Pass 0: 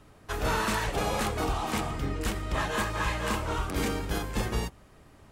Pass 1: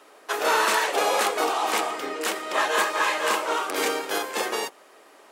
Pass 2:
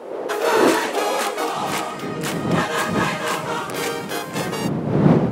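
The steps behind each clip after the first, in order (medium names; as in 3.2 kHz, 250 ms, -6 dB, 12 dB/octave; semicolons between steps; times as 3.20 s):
high-pass 380 Hz 24 dB/octave; trim +8 dB
wind noise 410 Hz -26 dBFS; high-pass sweep 480 Hz -> 160 Hz, 0.23–1.59 s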